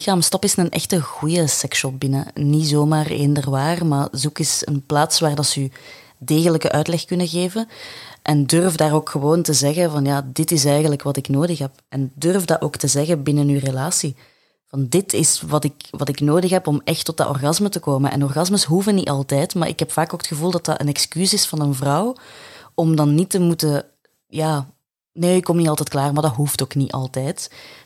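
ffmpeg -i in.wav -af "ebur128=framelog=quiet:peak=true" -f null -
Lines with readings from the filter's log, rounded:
Integrated loudness:
  I:         -18.8 LUFS
  Threshold: -29.2 LUFS
Loudness range:
  LRA:         2.1 LU
  Threshold: -39.1 LUFS
  LRA low:   -20.2 LUFS
  LRA high:  -18.1 LUFS
True peak:
  Peak:       -2.3 dBFS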